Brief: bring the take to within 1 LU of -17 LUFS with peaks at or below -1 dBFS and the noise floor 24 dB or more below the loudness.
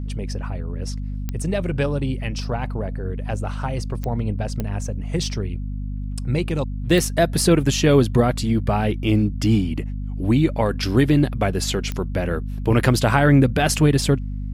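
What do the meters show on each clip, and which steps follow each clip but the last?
clicks 5; hum 50 Hz; harmonics up to 250 Hz; hum level -25 dBFS; loudness -21.5 LUFS; peak -2.5 dBFS; loudness target -17.0 LUFS
-> de-click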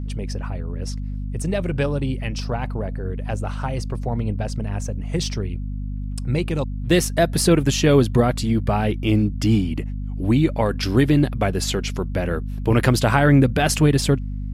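clicks 0; hum 50 Hz; harmonics up to 250 Hz; hum level -25 dBFS
-> notches 50/100/150/200/250 Hz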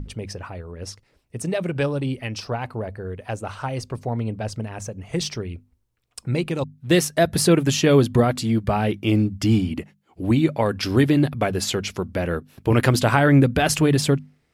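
hum none; loudness -21.5 LUFS; peak -2.5 dBFS; loudness target -17.0 LUFS
-> gain +4.5 dB; limiter -1 dBFS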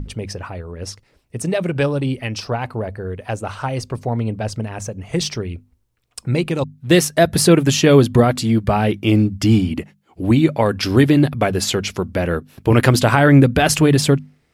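loudness -17.0 LUFS; peak -1.0 dBFS; noise floor -63 dBFS

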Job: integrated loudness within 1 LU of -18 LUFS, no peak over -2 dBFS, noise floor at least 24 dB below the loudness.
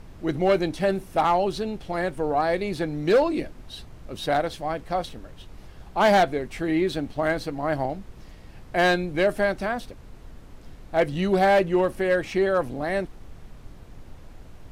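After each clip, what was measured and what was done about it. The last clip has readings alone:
clipped 0.6%; flat tops at -13.5 dBFS; noise floor -46 dBFS; noise floor target -49 dBFS; loudness -24.5 LUFS; peak -13.5 dBFS; loudness target -18.0 LUFS
-> clip repair -13.5 dBFS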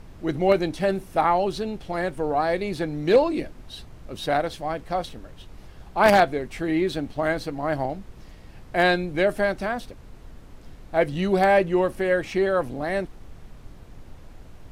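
clipped 0.0%; noise floor -46 dBFS; noise floor target -48 dBFS
-> noise print and reduce 6 dB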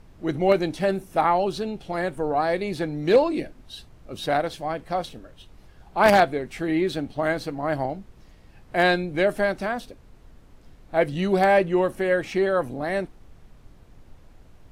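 noise floor -51 dBFS; loudness -24.0 LUFS; peak -4.5 dBFS; loudness target -18.0 LUFS
-> gain +6 dB; limiter -2 dBFS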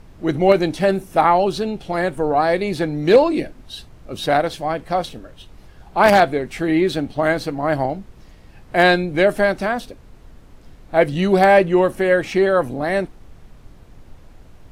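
loudness -18.0 LUFS; peak -2.0 dBFS; noise floor -45 dBFS

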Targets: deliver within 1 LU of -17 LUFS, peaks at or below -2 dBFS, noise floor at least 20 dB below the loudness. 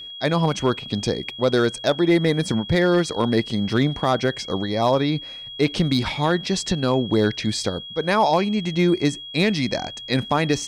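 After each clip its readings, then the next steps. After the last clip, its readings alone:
clipped 0.9%; flat tops at -10.0 dBFS; steady tone 3300 Hz; tone level -34 dBFS; loudness -21.5 LUFS; peak -10.0 dBFS; loudness target -17.0 LUFS
-> clip repair -10 dBFS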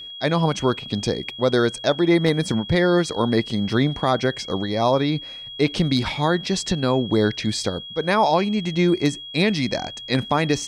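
clipped 0.0%; steady tone 3300 Hz; tone level -34 dBFS
-> notch 3300 Hz, Q 30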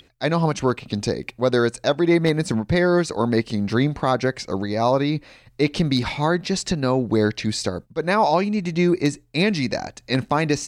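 steady tone none; loudness -21.5 LUFS; peak -4.0 dBFS; loudness target -17.0 LUFS
-> gain +4.5 dB; limiter -2 dBFS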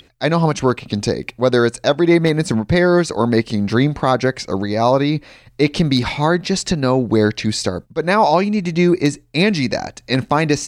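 loudness -17.5 LUFS; peak -2.0 dBFS; noise floor -51 dBFS

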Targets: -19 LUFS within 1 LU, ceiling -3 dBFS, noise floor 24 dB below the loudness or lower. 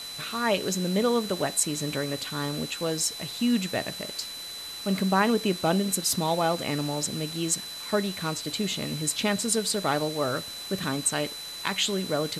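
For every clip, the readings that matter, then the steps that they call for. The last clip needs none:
steady tone 4000 Hz; tone level -37 dBFS; noise floor -38 dBFS; noise floor target -52 dBFS; loudness -27.5 LUFS; peak -10.0 dBFS; loudness target -19.0 LUFS
-> notch 4000 Hz, Q 30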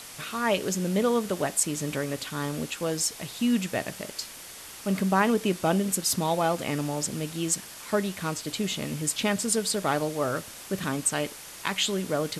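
steady tone none; noise floor -44 dBFS; noise floor target -52 dBFS
-> denoiser 8 dB, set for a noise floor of -44 dBFS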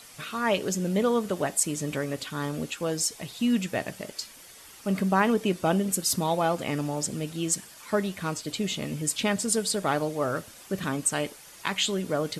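noise floor -49 dBFS; noise floor target -52 dBFS
-> denoiser 6 dB, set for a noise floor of -49 dBFS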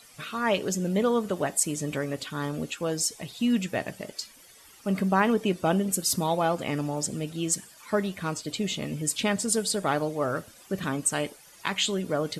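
noise floor -53 dBFS; loudness -28.0 LUFS; peak -10.5 dBFS; loudness target -19.0 LUFS
-> gain +9 dB; limiter -3 dBFS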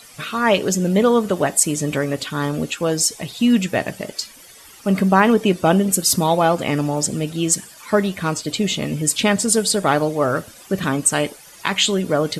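loudness -19.0 LUFS; peak -3.0 dBFS; noise floor -44 dBFS

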